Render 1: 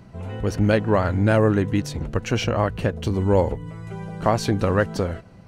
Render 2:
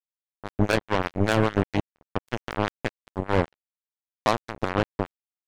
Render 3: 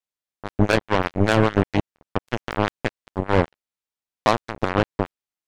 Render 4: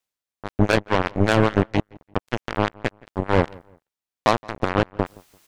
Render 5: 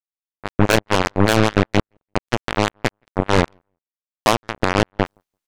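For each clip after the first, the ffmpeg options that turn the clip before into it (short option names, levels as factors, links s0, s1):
-filter_complex "[0:a]acrossover=split=510[s0][s1];[s0]aeval=exprs='val(0)*(1-0.7/2+0.7/2*cos(2*PI*5*n/s))':c=same[s2];[s1]aeval=exprs='val(0)*(1-0.7/2-0.7/2*cos(2*PI*5*n/s))':c=same[s3];[s2][s3]amix=inputs=2:normalize=0,acrusher=bits=2:mix=0:aa=0.5"
-af "highshelf=f=11000:g=-8.5,volume=1.58"
-filter_complex "[0:a]areverse,acompressor=mode=upward:threshold=0.0251:ratio=2.5,areverse,asplit=2[s0][s1];[s1]adelay=170,lowpass=f=2100:p=1,volume=0.0631,asplit=2[s2][s3];[s3]adelay=170,lowpass=f=2100:p=1,volume=0.31[s4];[s0][s2][s4]amix=inputs=3:normalize=0"
-af "aeval=exprs='0.708*(cos(1*acos(clip(val(0)/0.708,-1,1)))-cos(1*PI/2))+0.112*(cos(5*acos(clip(val(0)/0.708,-1,1)))-cos(5*PI/2))+0.178*(cos(7*acos(clip(val(0)/0.708,-1,1)))-cos(7*PI/2))+0.0794*(cos(8*acos(clip(val(0)/0.708,-1,1)))-cos(8*PI/2))':c=same,volume=1.19"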